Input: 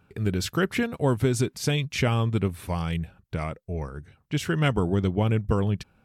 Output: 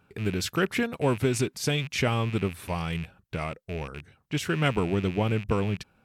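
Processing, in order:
loose part that buzzes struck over −34 dBFS, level −29 dBFS
low-shelf EQ 150 Hz −6.5 dB

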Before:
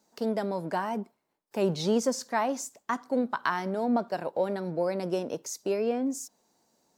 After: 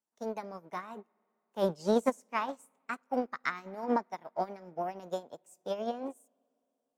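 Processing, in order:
formants moved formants +4 semitones
spring reverb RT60 3.5 s, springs 51/57 ms, chirp 25 ms, DRR 18.5 dB
expander for the loud parts 2.5 to 1, over −39 dBFS

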